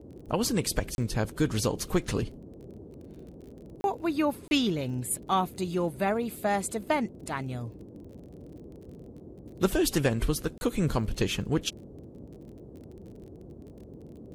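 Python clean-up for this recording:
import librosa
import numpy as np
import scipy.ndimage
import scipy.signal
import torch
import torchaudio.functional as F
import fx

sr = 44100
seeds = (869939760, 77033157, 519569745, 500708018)

y = fx.fix_declick_ar(x, sr, threshold=6.5)
y = fx.fix_interpolate(y, sr, at_s=(0.95, 3.81, 4.48, 10.58), length_ms=31.0)
y = fx.noise_reduce(y, sr, print_start_s=3.3, print_end_s=3.8, reduce_db=27.0)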